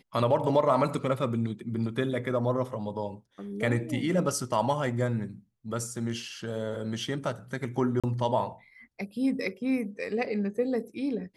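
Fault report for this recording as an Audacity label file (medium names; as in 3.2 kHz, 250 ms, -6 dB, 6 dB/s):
8.000000	8.040000	dropout 36 ms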